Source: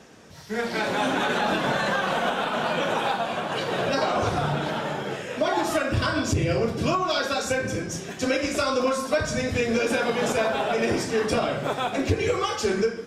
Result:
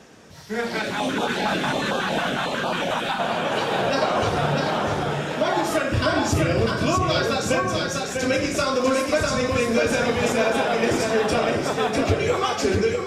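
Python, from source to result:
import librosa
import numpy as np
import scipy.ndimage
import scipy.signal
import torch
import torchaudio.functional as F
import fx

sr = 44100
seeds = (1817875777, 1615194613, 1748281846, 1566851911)

y = x + 10.0 ** (-3.5 / 20.0) * np.pad(x, (int(648 * sr / 1000.0), 0))[:len(x)]
y = fx.filter_held_notch(y, sr, hz=11.0, low_hz=380.0, high_hz=1900.0, at=(0.78, 3.18), fade=0.02)
y = y * 10.0 ** (1.5 / 20.0)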